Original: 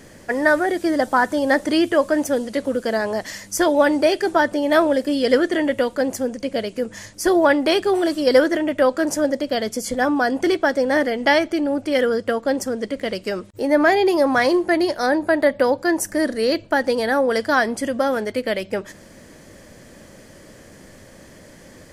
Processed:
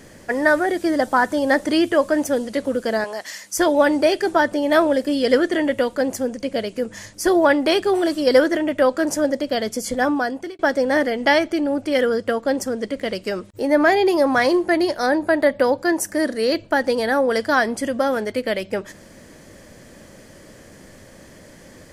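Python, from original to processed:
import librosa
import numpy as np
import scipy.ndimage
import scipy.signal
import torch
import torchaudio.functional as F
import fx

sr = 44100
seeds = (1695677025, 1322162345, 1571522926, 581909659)

y = fx.highpass(x, sr, hz=970.0, slope=6, at=(3.04, 3.58))
y = fx.low_shelf(y, sr, hz=71.0, db=-11.5, at=(15.92, 16.54))
y = fx.edit(y, sr, fx.fade_out_span(start_s=10.09, length_s=0.5), tone=tone)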